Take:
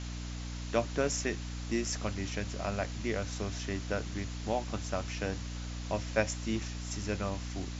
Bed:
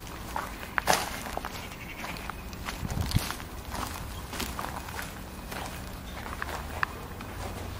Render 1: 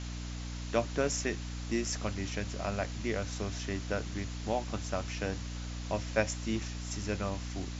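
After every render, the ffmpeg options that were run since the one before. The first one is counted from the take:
-af anull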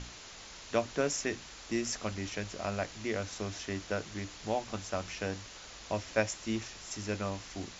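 -af "bandreject=f=60:t=h:w=6,bandreject=f=120:t=h:w=6,bandreject=f=180:t=h:w=6,bandreject=f=240:t=h:w=6,bandreject=f=300:t=h:w=6"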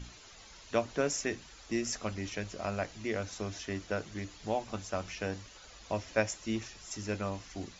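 -af "afftdn=nr=9:nf=-49"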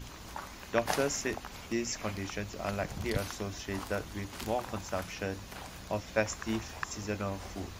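-filter_complex "[1:a]volume=-8.5dB[a];[0:a][a]amix=inputs=2:normalize=0"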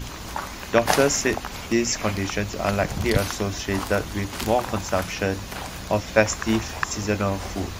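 -af "volume=11.5dB,alimiter=limit=-2dB:level=0:latency=1"

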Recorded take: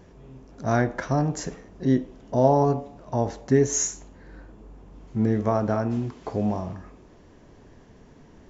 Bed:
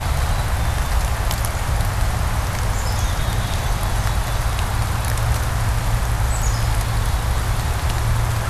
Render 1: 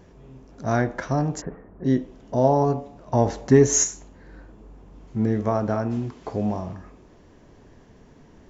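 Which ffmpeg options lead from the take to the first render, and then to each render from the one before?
-filter_complex "[0:a]asplit=3[a][b][c];[a]afade=t=out:st=1.4:d=0.02[d];[b]lowpass=f=1.7k:w=0.5412,lowpass=f=1.7k:w=1.3066,afade=t=in:st=1.4:d=0.02,afade=t=out:st=1.84:d=0.02[e];[c]afade=t=in:st=1.84:d=0.02[f];[d][e][f]amix=inputs=3:normalize=0,asettb=1/sr,asplit=3[g][h][i];[g]atrim=end=3.134[j];[h]atrim=start=3.13:end=3.84,asetpts=PTS-STARTPTS,afade=t=in:d=0.004:c=qsin,afade=t=out:st=0.706:d=0.004:c=qsin,acontrast=29[k];[i]atrim=start=3.836[l];[j][k]acrossfade=d=0.004:c1=hsin:c2=qsin[m];[m][l]acrossfade=d=0.004:c1=qsin:c2=hsin"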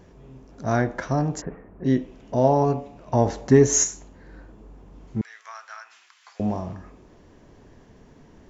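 -filter_complex "[0:a]asettb=1/sr,asplit=3[a][b][c];[a]atrim=end=1.474[d];[b]atrim=start=1.47:end=3.15,asetpts=PTS-STARTPTS,afade=t=in:d=0.004:c=qsin,afade=t=out:st=1.676:d=0.004:c=qsin,equalizer=f=2.5k:t=o:w=0.5:g=7[e];[c]atrim=start=3.146[f];[d][e]acrossfade=d=0.004:c1=hsin:c2=qsin[g];[g][f]acrossfade=d=0.004:c1=qsin:c2=hsin,asettb=1/sr,asplit=3[h][i][j];[h]atrim=end=5.214[k];[i]atrim=start=5.21:end=6.4,asetpts=PTS-STARTPTS,afade=t=in:d=0.004:c=qsin,afade=t=out:st=1.186:d=0.004:c=qsin,highpass=f=1.4k:w=0.5412,highpass=f=1.4k:w=1.3066[l];[j]atrim=start=6.396[m];[k][l]acrossfade=d=0.004:c1=hsin:c2=qsin[n];[n][m]acrossfade=d=0.004:c1=qsin:c2=hsin"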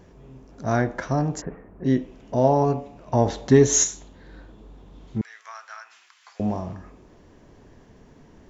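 -filter_complex "[0:a]asettb=1/sr,asplit=3[a][b][c];[a]atrim=end=3.284[d];[b]atrim=start=3.28:end=5.18,asetpts=PTS-STARTPTS,afade=t=in:d=0.004:c=qsin,afade=t=out:st=1.896:d=0.004:c=qsin,equalizer=f=3.6k:w=2.9:g=11[e];[c]atrim=start=5.176[f];[d][e]acrossfade=d=0.004:c1=hsin:c2=qsin[g];[g][f]acrossfade=d=0.004:c1=qsin:c2=hsin"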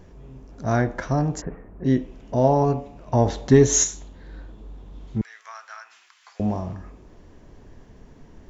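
-af "lowshelf=f=62:g=11"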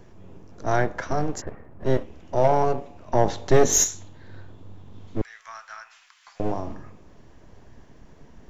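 -filter_complex "[0:a]aeval=exprs='0.631*(cos(1*acos(clip(val(0)/0.631,-1,1)))-cos(1*PI/2))+0.0316*(cos(6*acos(clip(val(0)/0.631,-1,1)))-cos(6*PI/2))':c=same,acrossover=split=440|640[a][b][c];[a]aeval=exprs='abs(val(0))':c=same[d];[d][b][c]amix=inputs=3:normalize=0"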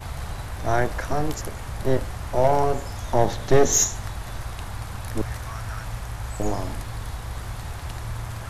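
-filter_complex "[1:a]volume=-12.5dB[a];[0:a][a]amix=inputs=2:normalize=0"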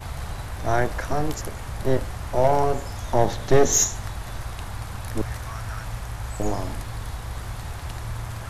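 -af anull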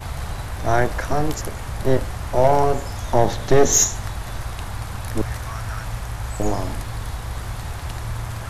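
-af "volume=3.5dB,alimiter=limit=-2dB:level=0:latency=1"

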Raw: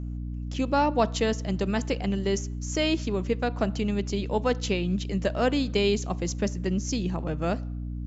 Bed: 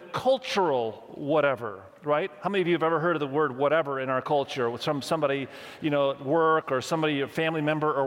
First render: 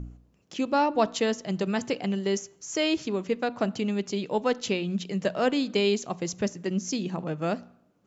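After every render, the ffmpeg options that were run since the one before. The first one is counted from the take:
-af "bandreject=f=60:t=h:w=4,bandreject=f=120:t=h:w=4,bandreject=f=180:t=h:w=4,bandreject=f=240:t=h:w=4,bandreject=f=300:t=h:w=4"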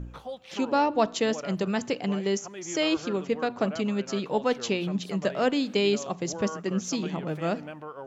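-filter_complex "[1:a]volume=-15dB[a];[0:a][a]amix=inputs=2:normalize=0"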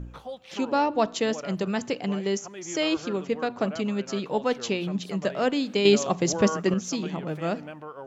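-filter_complex "[0:a]asettb=1/sr,asplit=3[a][b][c];[a]atrim=end=5.854[d];[b]atrim=start=5.85:end=6.74,asetpts=PTS-STARTPTS,afade=t=in:d=0.004:c=qsin,afade=t=out:st=0.886:d=0.004:c=qsin,acontrast=70[e];[c]atrim=start=6.736[f];[d][e]acrossfade=d=0.004:c1=hsin:c2=qsin[g];[g][f]acrossfade=d=0.004:c1=qsin:c2=hsin"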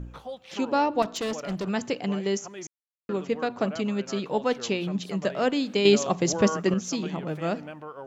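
-filter_complex "[0:a]asettb=1/sr,asplit=3[a][b][c];[a]atrim=end=1.024[d];[b]atrim=start=1.02:end=1.69,asetpts=PTS-STARTPTS,afade=t=in:d=0.004:c=qsin,afade=t=out:st=0.666:d=0.004:c=qsin,asoftclip=type=hard:threshold=-26.5dB[e];[c]atrim=start=1.686[f];[d][e]acrossfade=d=0.004:c1=hsin:c2=qsin[g];[g][f]acrossfade=d=0.004:c1=qsin:c2=hsin,asplit=3[h][i][j];[h]atrim=end=2.67,asetpts=PTS-STARTPTS,afade=t=out:st=2.666:d=0.004:c=hsin[k];[i]atrim=start=2.67:end=3.09,asetpts=PTS-STARTPTS,volume=0[l];[j]atrim=start=3.09,asetpts=PTS-STARTPTS,afade=t=in:d=0.004:c=hsin[m];[k][l][m]concat=n=3:v=0:a=1"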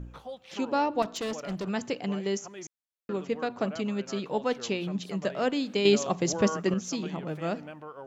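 -af "volume=-3dB"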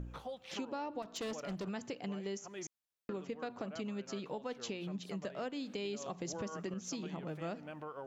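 -af "alimiter=limit=-21dB:level=0:latency=1:release=198,acompressor=threshold=-41dB:ratio=3"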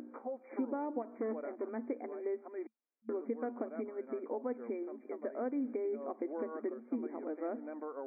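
-af "afftfilt=real='re*between(b*sr/4096,220,2400)':imag='im*between(b*sr/4096,220,2400)':win_size=4096:overlap=0.75,tiltshelf=f=880:g=8"

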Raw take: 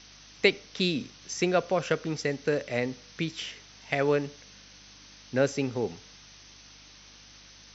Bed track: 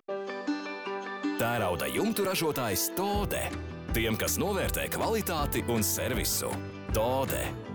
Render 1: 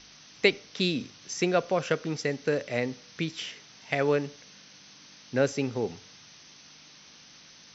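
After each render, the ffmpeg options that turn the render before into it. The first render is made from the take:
-af "bandreject=f=50:t=h:w=4,bandreject=f=100:t=h:w=4"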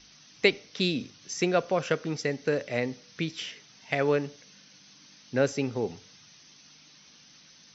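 -af "afftdn=nr=6:nf=-53"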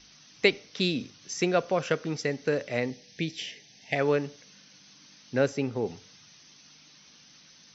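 -filter_complex "[0:a]asettb=1/sr,asplit=3[a][b][c];[a]atrim=end=2.904[d];[b]atrim=start=2.9:end=3.96,asetpts=PTS-STARTPTS,afade=t=in:d=0.004:c=qsin,afade=t=out:st=1.056:d=0.004:c=qsin,asuperstop=centerf=1200:order=8:qfactor=1.5[e];[c]atrim=start=3.956[f];[d][e]acrossfade=d=0.004:c1=hsin:c2=qsin[g];[g][f]acrossfade=d=0.004:c1=qsin:c2=hsin,asettb=1/sr,asplit=3[h][i][j];[h]atrim=end=5.464[k];[i]atrim=start=5.46:end=5.86,asetpts=PTS-STARTPTS,afade=t=in:d=0.004:c=qsin,afade=t=out:st=0.396:d=0.004:c=qsin,highshelf=f=3.8k:g=-6.5[l];[j]atrim=start=5.856[m];[k][l]acrossfade=d=0.004:c1=hsin:c2=qsin[n];[n][m]acrossfade=d=0.004:c1=qsin:c2=hsin"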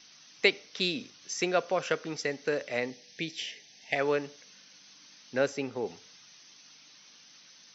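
-af "highpass=f=450:p=1"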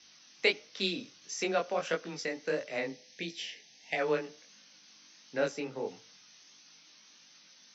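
-af "flanger=delay=18.5:depth=6.4:speed=1.5,afreqshift=14"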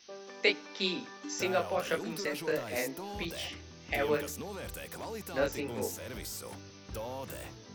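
-filter_complex "[1:a]volume=-12dB[a];[0:a][a]amix=inputs=2:normalize=0"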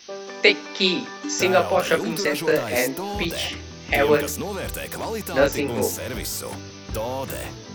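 -af "volume=12dB,alimiter=limit=-3dB:level=0:latency=1"

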